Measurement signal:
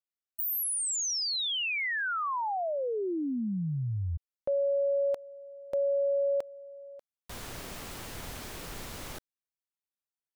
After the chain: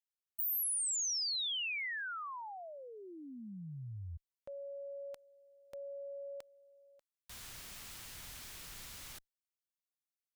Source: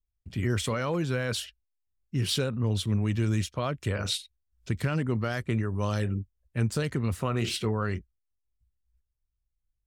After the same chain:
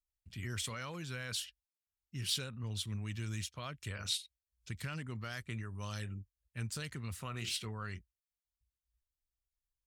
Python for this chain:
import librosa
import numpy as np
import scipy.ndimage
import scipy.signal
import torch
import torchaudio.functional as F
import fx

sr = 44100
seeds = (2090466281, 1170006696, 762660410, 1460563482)

y = fx.tone_stack(x, sr, knobs='5-5-5')
y = y * 10.0 ** (2.0 / 20.0)